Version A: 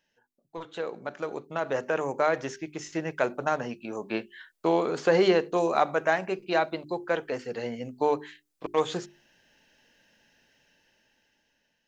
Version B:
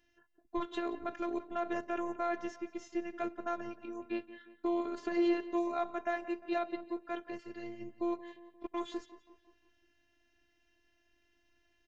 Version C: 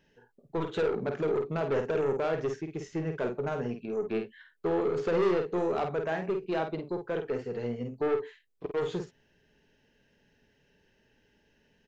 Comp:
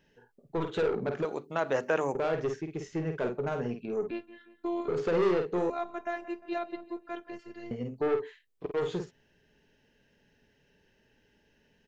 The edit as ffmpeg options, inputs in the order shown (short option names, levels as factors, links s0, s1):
-filter_complex "[1:a]asplit=2[s0][s1];[2:a]asplit=4[s2][s3][s4][s5];[s2]atrim=end=1.252[s6];[0:a]atrim=start=1.248:end=2.152[s7];[s3]atrim=start=2.148:end=4.112[s8];[s0]atrim=start=4.108:end=4.882[s9];[s4]atrim=start=4.878:end=5.702[s10];[s1]atrim=start=5.698:end=7.712[s11];[s5]atrim=start=7.708[s12];[s6][s7]acrossfade=d=0.004:c1=hsin:c2=hsin[s13];[s13][s8]acrossfade=d=0.004:c1=hsin:c2=hsin[s14];[s14][s9]acrossfade=d=0.004:c1=hsin:c2=hsin[s15];[s15][s10]acrossfade=d=0.004:c1=hsin:c2=hsin[s16];[s16][s11]acrossfade=d=0.004:c1=hsin:c2=hsin[s17];[s17][s12]acrossfade=d=0.004:c1=hsin:c2=hsin"